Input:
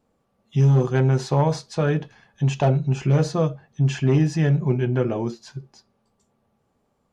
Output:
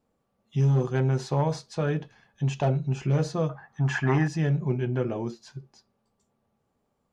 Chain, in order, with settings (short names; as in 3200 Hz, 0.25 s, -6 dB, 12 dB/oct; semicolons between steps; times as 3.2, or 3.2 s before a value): 3.49–4.28 band shelf 1200 Hz +14.5 dB; gain -5.5 dB